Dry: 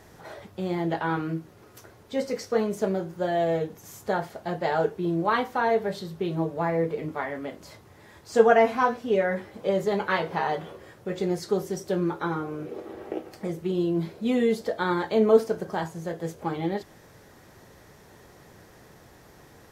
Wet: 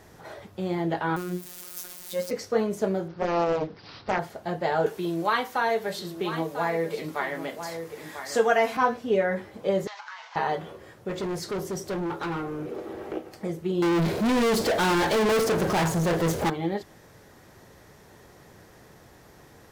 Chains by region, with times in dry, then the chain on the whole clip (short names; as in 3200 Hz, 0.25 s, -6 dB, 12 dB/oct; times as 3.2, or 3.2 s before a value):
1.16–2.31 switching spikes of -28.5 dBFS + robotiser 179 Hz
3.08–4.19 bell 1300 Hz +3.5 dB 0.42 oct + careless resampling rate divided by 4×, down none, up filtered + Doppler distortion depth 0.66 ms
4.86–8.77 tilt +2.5 dB/oct + echo 0.994 s -12.5 dB + three-band squash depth 40%
9.87–10.36 CVSD 32 kbps + steep high-pass 870 Hz + compressor 8:1, threshold -37 dBFS
11.09–13.17 hard clip -27 dBFS + sample leveller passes 1
13.82–16.5 hard clip -20.5 dBFS + sample leveller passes 5
whole clip: dry